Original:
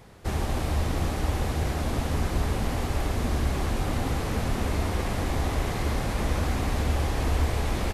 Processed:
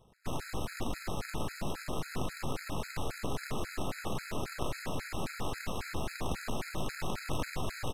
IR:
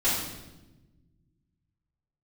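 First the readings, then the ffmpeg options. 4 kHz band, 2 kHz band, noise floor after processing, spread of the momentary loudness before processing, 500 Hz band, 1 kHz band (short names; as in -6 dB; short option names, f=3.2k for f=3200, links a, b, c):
-6.0 dB, -6.5 dB, -47 dBFS, 2 LU, -8.0 dB, -7.5 dB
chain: -af "aeval=exprs='0.211*(cos(1*acos(clip(val(0)/0.211,-1,1)))-cos(1*PI/2))+0.0841*(cos(3*acos(clip(val(0)/0.211,-1,1)))-cos(3*PI/2))+0.00841*(cos(7*acos(clip(val(0)/0.211,-1,1)))-cos(7*PI/2))+0.0473*(cos(8*acos(clip(val(0)/0.211,-1,1)))-cos(8*PI/2))':c=same,afftfilt=real='re*gt(sin(2*PI*3.7*pts/sr)*(1-2*mod(floor(b*sr/1024/1300),2)),0)':imag='im*gt(sin(2*PI*3.7*pts/sr)*(1-2*mod(floor(b*sr/1024/1300),2)),0)':win_size=1024:overlap=0.75,volume=-6dB"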